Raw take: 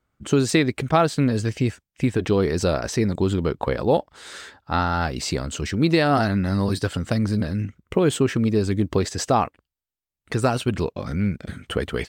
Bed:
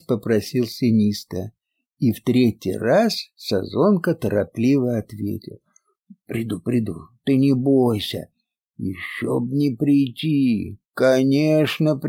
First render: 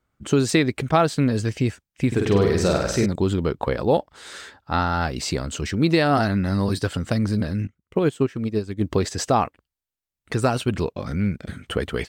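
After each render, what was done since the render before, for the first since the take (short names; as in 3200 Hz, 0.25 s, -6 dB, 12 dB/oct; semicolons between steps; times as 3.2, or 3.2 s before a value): 2.07–3.06 flutter echo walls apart 8.5 m, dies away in 0.75 s; 7.67–8.81 upward expander 2.5:1, over -26 dBFS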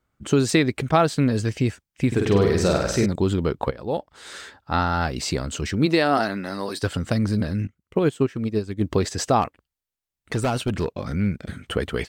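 3.71–4.31 fade in, from -16.5 dB; 5.85–6.82 HPF 190 Hz -> 450 Hz; 9.42–11.02 hard clip -18 dBFS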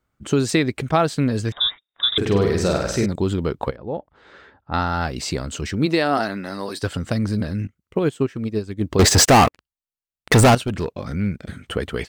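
1.52–2.18 inverted band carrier 3700 Hz; 3.76–4.74 tape spacing loss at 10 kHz 40 dB; 8.99–10.55 sample leveller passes 5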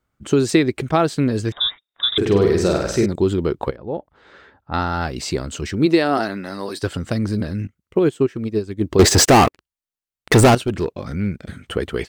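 dynamic EQ 360 Hz, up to +7 dB, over -35 dBFS, Q 3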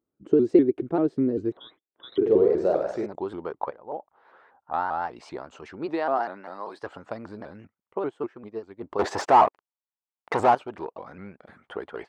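band-pass sweep 350 Hz -> 870 Hz, 1.87–3.27; shaped vibrato saw up 5.1 Hz, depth 160 cents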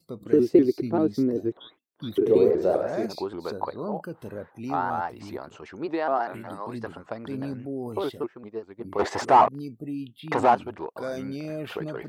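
add bed -16.5 dB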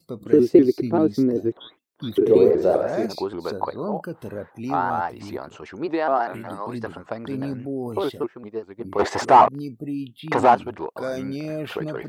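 gain +4 dB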